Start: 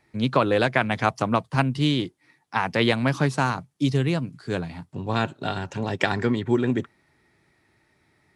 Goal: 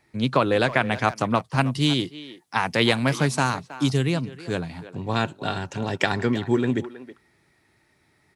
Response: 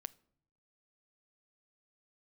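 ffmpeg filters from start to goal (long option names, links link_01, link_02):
-filter_complex "[0:a]asetnsamples=nb_out_samples=441:pad=0,asendcmd='1.61 highshelf g 10.5;4.07 highshelf g 5',highshelf=frequency=4600:gain=3.5,asplit=2[link_01][link_02];[link_02]adelay=320,highpass=300,lowpass=3400,asoftclip=type=hard:threshold=-13.5dB,volume=-14dB[link_03];[link_01][link_03]amix=inputs=2:normalize=0"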